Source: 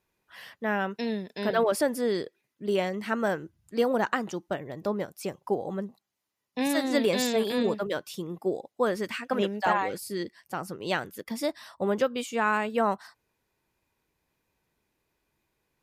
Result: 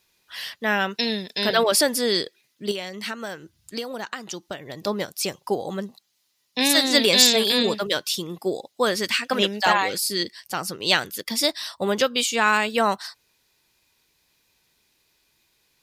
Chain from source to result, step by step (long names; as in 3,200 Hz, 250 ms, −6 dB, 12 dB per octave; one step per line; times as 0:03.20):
high-shelf EQ 2,000 Hz +11 dB
0:02.71–0:04.87: downward compressor 5 to 1, threshold −33 dBFS, peak gain reduction 13.5 dB
parametric band 4,200 Hz +7.5 dB 1.2 octaves
level +2.5 dB